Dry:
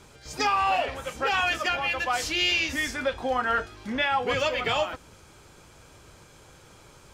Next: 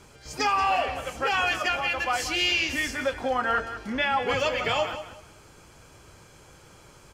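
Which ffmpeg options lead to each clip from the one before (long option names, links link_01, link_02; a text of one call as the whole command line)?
ffmpeg -i in.wav -af "bandreject=frequency=3700:width=10,aecho=1:1:183|366|549:0.266|0.0639|0.0153" out.wav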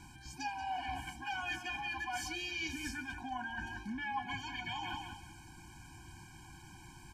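ffmpeg -i in.wav -af "areverse,acompressor=threshold=-34dB:ratio=6,areverse,afftfilt=real='re*eq(mod(floor(b*sr/1024/360),2),0)':imag='im*eq(mod(floor(b*sr/1024/360),2),0)':win_size=1024:overlap=0.75" out.wav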